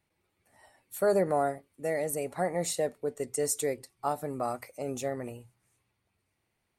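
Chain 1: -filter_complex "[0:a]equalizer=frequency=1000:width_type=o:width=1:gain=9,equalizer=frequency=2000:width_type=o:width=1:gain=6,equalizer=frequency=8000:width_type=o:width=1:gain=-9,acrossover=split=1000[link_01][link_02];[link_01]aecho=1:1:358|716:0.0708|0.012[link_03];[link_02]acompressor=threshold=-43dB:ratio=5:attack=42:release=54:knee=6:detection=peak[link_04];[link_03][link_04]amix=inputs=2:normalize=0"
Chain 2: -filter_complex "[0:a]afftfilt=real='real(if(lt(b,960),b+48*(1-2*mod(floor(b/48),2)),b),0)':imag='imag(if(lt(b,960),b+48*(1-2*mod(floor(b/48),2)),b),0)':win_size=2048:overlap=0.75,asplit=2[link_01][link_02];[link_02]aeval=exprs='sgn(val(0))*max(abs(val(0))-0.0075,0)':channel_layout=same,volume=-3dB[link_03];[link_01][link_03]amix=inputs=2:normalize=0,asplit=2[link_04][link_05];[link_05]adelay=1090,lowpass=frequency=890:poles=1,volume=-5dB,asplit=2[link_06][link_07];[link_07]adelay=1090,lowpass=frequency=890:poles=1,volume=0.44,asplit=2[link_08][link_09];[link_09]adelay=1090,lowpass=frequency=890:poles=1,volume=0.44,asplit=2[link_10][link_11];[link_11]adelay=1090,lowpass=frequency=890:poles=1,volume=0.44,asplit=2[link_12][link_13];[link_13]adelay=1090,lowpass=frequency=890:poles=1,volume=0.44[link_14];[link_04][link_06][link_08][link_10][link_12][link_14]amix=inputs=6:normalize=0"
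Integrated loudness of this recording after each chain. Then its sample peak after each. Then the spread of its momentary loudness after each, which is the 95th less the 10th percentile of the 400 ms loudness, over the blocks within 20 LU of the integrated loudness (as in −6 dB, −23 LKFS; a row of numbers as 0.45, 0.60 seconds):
−29.5, −25.5 LKFS; −12.5, −10.5 dBFS; 10, 19 LU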